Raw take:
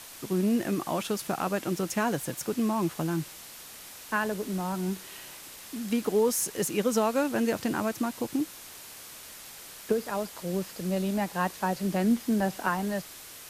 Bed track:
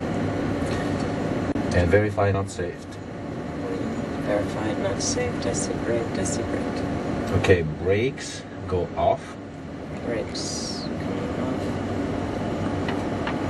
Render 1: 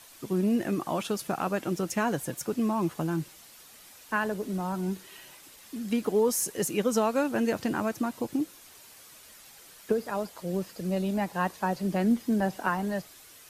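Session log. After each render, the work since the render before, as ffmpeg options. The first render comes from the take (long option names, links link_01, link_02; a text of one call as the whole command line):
ffmpeg -i in.wav -af "afftdn=noise_reduction=8:noise_floor=-46" out.wav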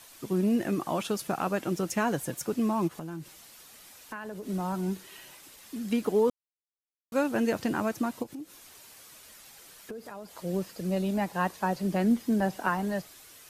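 ffmpeg -i in.wav -filter_complex "[0:a]asplit=3[link_01][link_02][link_03];[link_01]afade=type=out:start_time=2.87:duration=0.02[link_04];[link_02]acompressor=threshold=-36dB:ratio=4:attack=3.2:release=140:knee=1:detection=peak,afade=type=in:start_time=2.87:duration=0.02,afade=type=out:start_time=4.47:duration=0.02[link_05];[link_03]afade=type=in:start_time=4.47:duration=0.02[link_06];[link_04][link_05][link_06]amix=inputs=3:normalize=0,asplit=3[link_07][link_08][link_09];[link_07]afade=type=out:start_time=8.22:duration=0.02[link_10];[link_08]acompressor=threshold=-41dB:ratio=3:attack=3.2:release=140:knee=1:detection=peak,afade=type=in:start_time=8.22:duration=0.02,afade=type=out:start_time=10.35:duration=0.02[link_11];[link_09]afade=type=in:start_time=10.35:duration=0.02[link_12];[link_10][link_11][link_12]amix=inputs=3:normalize=0,asplit=3[link_13][link_14][link_15];[link_13]atrim=end=6.3,asetpts=PTS-STARTPTS,afade=type=out:start_time=6.296:duration=0.004:curve=hsin[link_16];[link_14]atrim=start=6.3:end=7.12,asetpts=PTS-STARTPTS,volume=0[link_17];[link_15]atrim=start=7.12,asetpts=PTS-STARTPTS,afade=type=in:duration=0.004:curve=hsin[link_18];[link_16][link_17][link_18]concat=n=3:v=0:a=1" out.wav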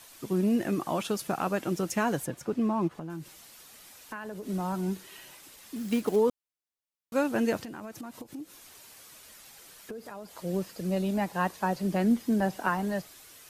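ffmpeg -i in.wav -filter_complex "[0:a]asettb=1/sr,asplit=3[link_01][link_02][link_03];[link_01]atrim=end=2.264[link_04];[link_02]atrim=start=2.26:end=3.1,asetpts=PTS-STARTPTS,afade=type=in:duration=0.004:curve=qsin,afade=type=out:start_time=0.836:duration=0.004:curve=qsin,lowpass=frequency=2200:poles=1[link_05];[link_03]atrim=start=3.096[link_06];[link_04][link_05]acrossfade=duration=0.004:curve1=hsin:curve2=qsin[link_07];[link_07][link_06]acrossfade=duration=0.004:curve1=qsin:curve2=hsin,asettb=1/sr,asplit=3[link_08][link_09][link_10];[link_08]atrim=end=5.764[link_11];[link_09]atrim=start=5.76:end=6.16,asetpts=PTS-STARTPTS,afade=type=in:duration=0.004:curve=qsin,afade=type=out:start_time=0.396:duration=0.004:curve=qsin,acrusher=bits=5:mode=log:mix=0:aa=0.000001[link_12];[link_10]atrim=start=6.156[link_13];[link_11][link_12]acrossfade=duration=0.004:curve1=hsin:curve2=qsin[link_14];[link_14][link_13]acrossfade=duration=0.004:curve1=qsin:curve2=hsin,asettb=1/sr,asplit=3[link_15][link_16][link_17];[link_15]atrim=end=7.624[link_18];[link_16]atrim=start=7.62:end=8.29,asetpts=PTS-STARTPTS,afade=type=in:duration=0.004:curve=qsin,afade=type=out:start_time=0.666:duration=0.004:curve=qsin,acompressor=threshold=-37dB:ratio=10:attack=3.2:release=140:knee=1:detection=peak[link_19];[link_17]atrim=start=8.286[link_20];[link_18][link_19]acrossfade=duration=0.004:curve1=hsin:curve2=qsin[link_21];[link_21][link_20]acrossfade=duration=0.004:curve1=qsin:curve2=hsin" out.wav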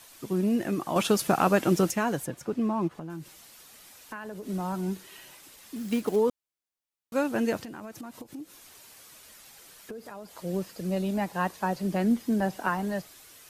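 ffmpeg -i in.wav -filter_complex "[0:a]asplit=3[link_01][link_02][link_03];[link_01]atrim=end=0.962[link_04];[link_02]atrim=start=0.958:end=1.912,asetpts=PTS-STARTPTS,volume=7dB[link_05];[link_03]atrim=start=1.908[link_06];[link_04][link_05]acrossfade=duration=0.004:curve1=hsin:curve2=hsin[link_07];[link_07][link_06]acrossfade=duration=0.004:curve1=hsin:curve2=hsin" out.wav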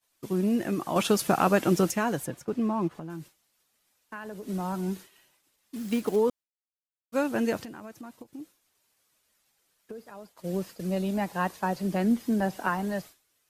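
ffmpeg -i in.wav -af "agate=range=-33dB:threshold=-38dB:ratio=3:detection=peak" out.wav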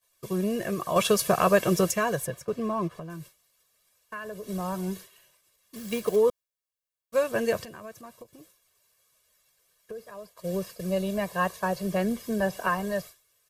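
ffmpeg -i in.wav -af "highshelf=frequency=8900:gain=3.5,aecho=1:1:1.8:0.79" out.wav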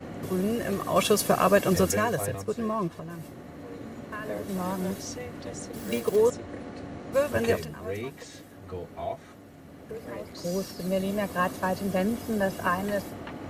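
ffmpeg -i in.wav -i bed.wav -filter_complex "[1:a]volume=-12.5dB[link_01];[0:a][link_01]amix=inputs=2:normalize=0" out.wav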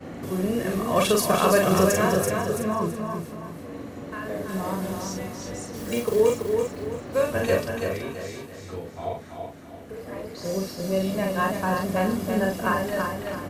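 ffmpeg -i in.wav -filter_complex "[0:a]asplit=2[link_01][link_02];[link_02]adelay=42,volume=-3dB[link_03];[link_01][link_03]amix=inputs=2:normalize=0,aecho=1:1:332|664|996|1328:0.562|0.197|0.0689|0.0241" out.wav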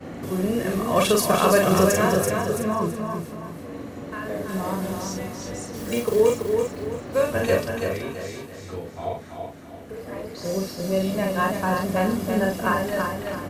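ffmpeg -i in.wav -af "volume=1.5dB" out.wav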